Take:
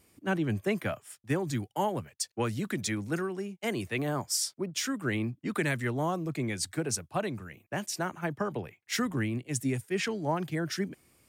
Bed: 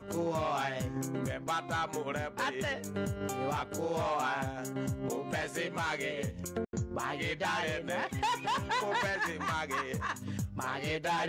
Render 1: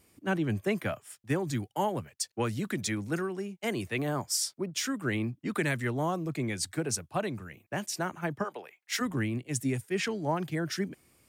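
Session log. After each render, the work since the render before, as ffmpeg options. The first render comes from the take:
ffmpeg -i in.wav -filter_complex "[0:a]asplit=3[link_01][link_02][link_03];[link_01]afade=type=out:start_time=8.43:duration=0.02[link_04];[link_02]highpass=580,afade=type=in:start_time=8.43:duration=0.02,afade=type=out:start_time=9:duration=0.02[link_05];[link_03]afade=type=in:start_time=9:duration=0.02[link_06];[link_04][link_05][link_06]amix=inputs=3:normalize=0" out.wav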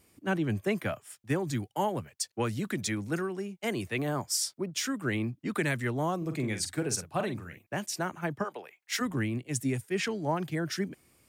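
ffmpeg -i in.wav -filter_complex "[0:a]asettb=1/sr,asplit=3[link_01][link_02][link_03];[link_01]atrim=end=6.174[link_04];[link_02]atrim=start=6.17:end=7.59,asetpts=PTS-STARTPTS,afade=type=in:duration=0.004:curve=qsin,afade=type=out:start_time=1.416:duration=0.004:curve=qsin,asplit=2[link_05][link_06];[link_06]adelay=46,volume=-8.5dB[link_07];[link_05][link_07]amix=inputs=2:normalize=0,atrim=end_sample=62622[link_08];[link_03]atrim=start=7.586[link_09];[link_04][link_08]acrossfade=duration=0.004:curve1=hsin:curve2=qsin[link_10];[link_10][link_09]acrossfade=duration=0.004:curve1=qsin:curve2=hsin" out.wav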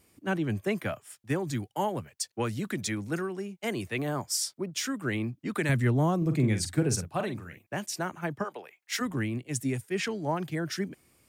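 ffmpeg -i in.wav -filter_complex "[0:a]asettb=1/sr,asplit=3[link_01][link_02][link_03];[link_01]atrim=end=5.694[link_04];[link_02]atrim=start=5.69:end=7.08,asetpts=PTS-STARTPTS,afade=type=in:duration=0.004:curve=qsin,afade=type=out:start_time=1.386:duration=0.004:curve=qsin,lowshelf=frequency=270:gain=11.5[link_05];[link_03]atrim=start=7.076[link_06];[link_04][link_05]acrossfade=duration=0.004:curve1=hsin:curve2=qsin[link_07];[link_07][link_06]acrossfade=duration=0.004:curve1=qsin:curve2=hsin" out.wav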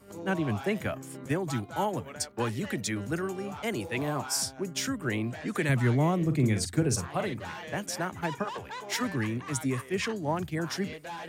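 ffmpeg -i in.wav -i bed.wav -filter_complex "[1:a]volume=-8dB[link_01];[0:a][link_01]amix=inputs=2:normalize=0" out.wav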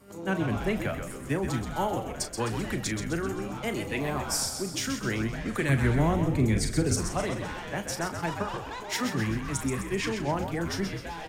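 ffmpeg -i in.wav -filter_complex "[0:a]asplit=2[link_01][link_02];[link_02]adelay=36,volume=-10.5dB[link_03];[link_01][link_03]amix=inputs=2:normalize=0,asplit=2[link_04][link_05];[link_05]asplit=6[link_06][link_07][link_08][link_09][link_10][link_11];[link_06]adelay=129,afreqshift=-70,volume=-7dB[link_12];[link_07]adelay=258,afreqshift=-140,volume=-12.7dB[link_13];[link_08]adelay=387,afreqshift=-210,volume=-18.4dB[link_14];[link_09]adelay=516,afreqshift=-280,volume=-24dB[link_15];[link_10]adelay=645,afreqshift=-350,volume=-29.7dB[link_16];[link_11]adelay=774,afreqshift=-420,volume=-35.4dB[link_17];[link_12][link_13][link_14][link_15][link_16][link_17]amix=inputs=6:normalize=0[link_18];[link_04][link_18]amix=inputs=2:normalize=0" out.wav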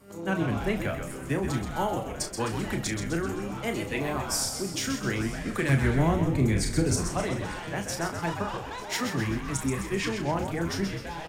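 ffmpeg -i in.wav -filter_complex "[0:a]asplit=2[link_01][link_02];[link_02]adelay=30,volume=-9dB[link_03];[link_01][link_03]amix=inputs=2:normalize=0,aecho=1:1:896:0.119" out.wav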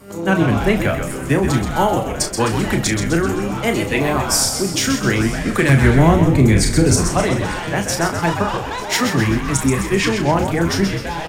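ffmpeg -i in.wav -af "volume=12dB,alimiter=limit=-2dB:level=0:latency=1" out.wav

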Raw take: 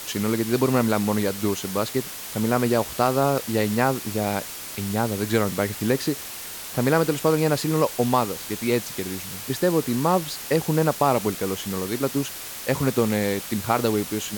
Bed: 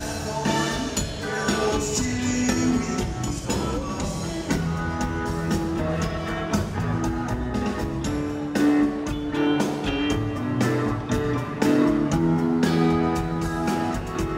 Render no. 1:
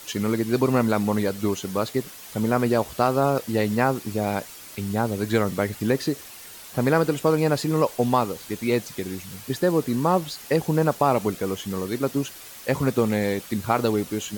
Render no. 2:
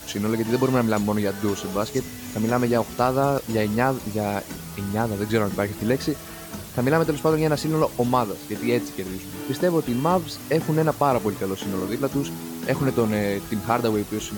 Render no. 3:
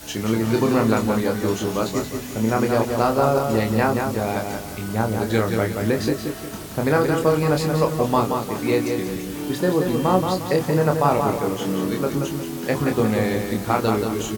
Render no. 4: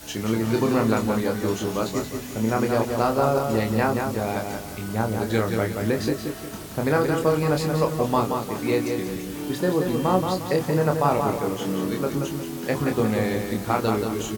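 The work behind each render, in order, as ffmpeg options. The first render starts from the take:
ffmpeg -i in.wav -af "afftdn=noise_reduction=8:noise_floor=-36" out.wav
ffmpeg -i in.wav -i bed.wav -filter_complex "[1:a]volume=-12.5dB[link_01];[0:a][link_01]amix=inputs=2:normalize=0" out.wav
ffmpeg -i in.wav -filter_complex "[0:a]asplit=2[link_01][link_02];[link_02]adelay=27,volume=-5dB[link_03];[link_01][link_03]amix=inputs=2:normalize=0,asplit=2[link_04][link_05];[link_05]adelay=178,lowpass=frequency=4900:poles=1,volume=-5dB,asplit=2[link_06][link_07];[link_07]adelay=178,lowpass=frequency=4900:poles=1,volume=0.4,asplit=2[link_08][link_09];[link_09]adelay=178,lowpass=frequency=4900:poles=1,volume=0.4,asplit=2[link_10][link_11];[link_11]adelay=178,lowpass=frequency=4900:poles=1,volume=0.4,asplit=2[link_12][link_13];[link_13]adelay=178,lowpass=frequency=4900:poles=1,volume=0.4[link_14];[link_06][link_08][link_10][link_12][link_14]amix=inputs=5:normalize=0[link_15];[link_04][link_15]amix=inputs=2:normalize=0" out.wav
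ffmpeg -i in.wav -af "volume=-2.5dB" out.wav

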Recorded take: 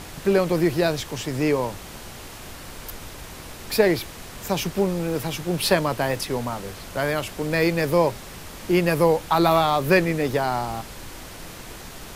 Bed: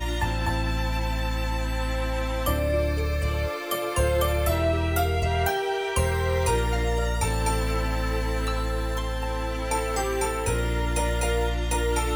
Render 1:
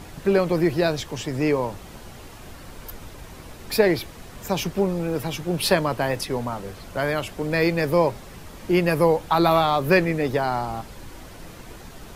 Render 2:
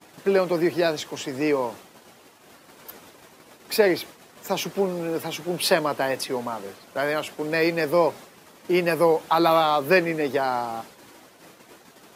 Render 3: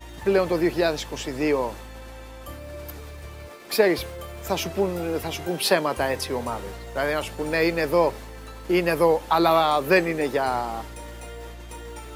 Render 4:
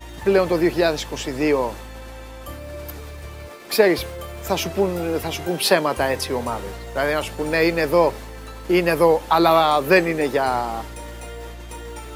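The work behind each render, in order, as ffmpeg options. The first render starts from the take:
ffmpeg -i in.wav -af "afftdn=noise_reduction=7:noise_floor=-40" out.wav
ffmpeg -i in.wav -af "agate=range=-33dB:threshold=-34dB:ratio=3:detection=peak,highpass=250" out.wav
ffmpeg -i in.wav -i bed.wav -filter_complex "[1:a]volume=-14dB[link_01];[0:a][link_01]amix=inputs=2:normalize=0" out.wav
ffmpeg -i in.wav -af "volume=3.5dB" out.wav

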